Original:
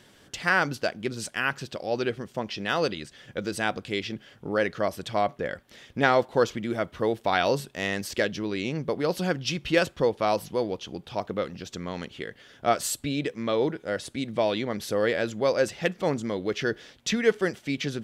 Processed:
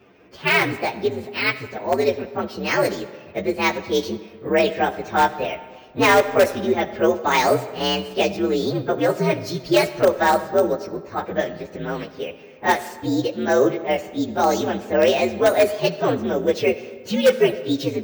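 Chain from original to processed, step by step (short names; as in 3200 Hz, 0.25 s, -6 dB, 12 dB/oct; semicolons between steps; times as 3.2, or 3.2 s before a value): inharmonic rescaling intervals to 122%; HPF 180 Hz 6 dB/oct; low-pass opened by the level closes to 2200 Hz, open at -22 dBFS; in parallel at -9 dB: wrapped overs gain 17.5 dB; on the sum: fifteen-band EQ 400 Hz +6 dB, 1600 Hz +3 dB, 10000 Hz -4 dB; on a send at -13.5 dB: reverb RT60 1.6 s, pre-delay 25 ms; on the sum: careless resampling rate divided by 2×, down none, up hold; gain +6 dB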